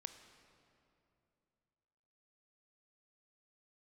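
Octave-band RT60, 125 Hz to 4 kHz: 3.2, 3.0, 2.9, 2.6, 2.2, 1.8 seconds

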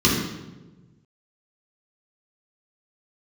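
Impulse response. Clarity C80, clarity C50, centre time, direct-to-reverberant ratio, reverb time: 4.5 dB, 2.0 dB, 58 ms, −6.5 dB, 1.2 s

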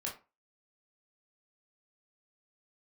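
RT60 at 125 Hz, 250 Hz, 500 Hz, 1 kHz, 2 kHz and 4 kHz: 0.30, 0.30, 0.30, 0.30, 0.25, 0.20 seconds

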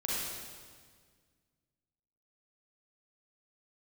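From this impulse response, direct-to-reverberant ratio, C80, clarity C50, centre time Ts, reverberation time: −6.5 dB, −1.0 dB, −4.0 dB, 124 ms, 1.7 s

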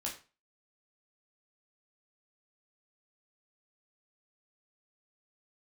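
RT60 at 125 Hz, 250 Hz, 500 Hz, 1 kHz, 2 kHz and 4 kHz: 0.35, 0.35, 0.35, 0.35, 0.30, 0.30 seconds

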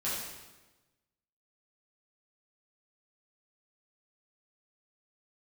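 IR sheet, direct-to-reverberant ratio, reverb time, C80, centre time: −9.5 dB, 1.2 s, 2.5 dB, 75 ms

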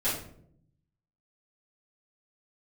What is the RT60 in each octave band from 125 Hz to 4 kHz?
1.3, 1.0, 0.80, 0.55, 0.45, 0.40 seconds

